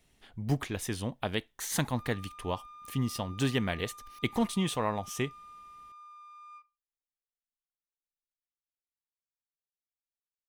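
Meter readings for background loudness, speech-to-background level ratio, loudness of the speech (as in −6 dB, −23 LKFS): −50.0 LKFS, 16.5 dB, −33.5 LKFS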